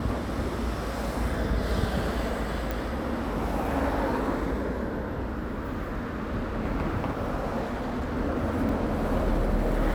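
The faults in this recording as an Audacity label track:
2.710000	2.710000	click
7.600000	8.170000	clipping −27 dBFS
8.690000	8.690000	drop-out 2.7 ms

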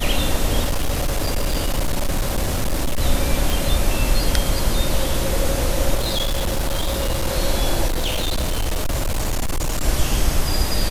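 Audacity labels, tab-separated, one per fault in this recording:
0.640000	3.010000	clipping −16 dBFS
3.500000	3.500000	click
5.950000	7.280000	clipping −17 dBFS
7.870000	9.840000	clipping −17.5 dBFS

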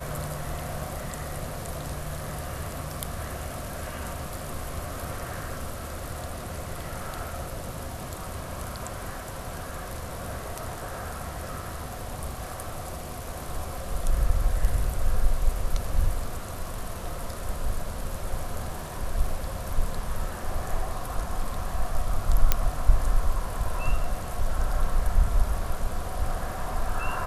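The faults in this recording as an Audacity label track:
22.520000	22.520000	click −4 dBFS

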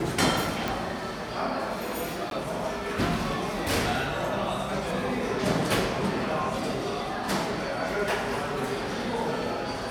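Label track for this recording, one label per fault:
0.680000	0.680000	click
2.300000	2.310000	drop-out 12 ms

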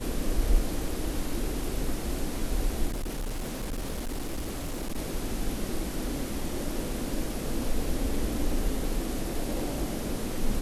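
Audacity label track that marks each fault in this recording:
2.860000	4.980000	clipping −28.5 dBFS

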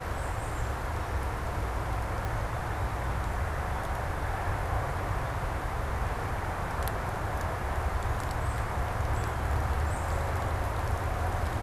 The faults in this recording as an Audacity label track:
2.250000	2.250000	click

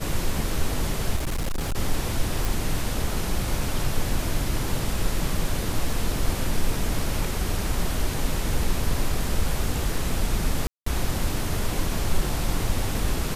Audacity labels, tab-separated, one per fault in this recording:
1.160000	1.750000	clipping −22.5 dBFS
2.450000	2.450000	click
10.670000	10.860000	drop-out 194 ms

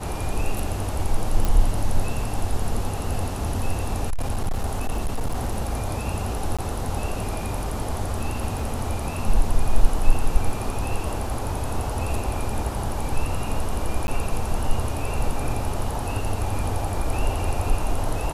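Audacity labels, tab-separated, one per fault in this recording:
1.450000	1.450000	click
4.100000	5.910000	clipping −19.5 dBFS
6.570000	6.590000	drop-out 16 ms
8.590000	8.590000	drop-out 2.6 ms
14.070000	14.080000	drop-out 11 ms

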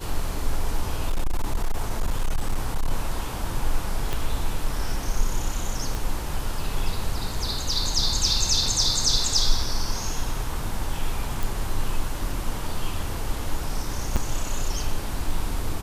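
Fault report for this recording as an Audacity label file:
1.100000	2.910000	clipping −18 dBFS
4.130000	4.130000	click
5.950000	5.950000	click
8.660000	8.660000	drop-out 3.1 ms
11.430000	11.430000	click
14.160000	14.170000	drop-out 6.7 ms

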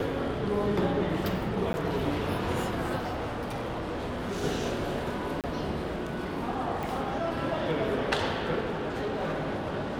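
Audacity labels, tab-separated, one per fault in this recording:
1.730000	1.740000	drop-out 10 ms
2.980000	4.440000	clipping −29.5 dBFS
5.410000	5.440000	drop-out 28 ms
6.830000	6.830000	click
8.690000	9.660000	clipping −27 dBFS

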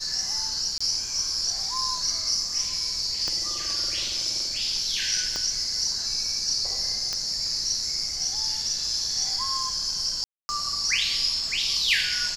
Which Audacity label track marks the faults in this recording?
0.780000	0.810000	drop-out 25 ms
3.280000	3.280000	click −16 dBFS
5.360000	5.360000	click −15 dBFS
7.130000	7.130000	click −14 dBFS
10.240000	10.490000	drop-out 250 ms

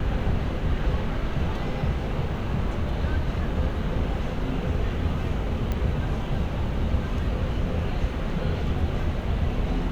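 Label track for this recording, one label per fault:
5.720000	5.720000	click −16 dBFS

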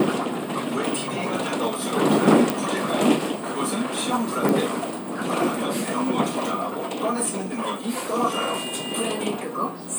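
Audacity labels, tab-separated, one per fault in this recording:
2.500000	2.500000	click
4.490000	4.490000	click

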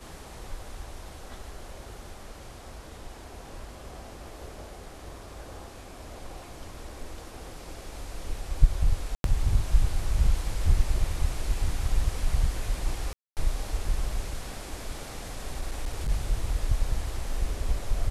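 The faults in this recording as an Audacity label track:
9.150000	9.240000	drop-out 92 ms
13.130000	13.370000	drop-out 238 ms
15.600000	16.100000	clipping −25 dBFS

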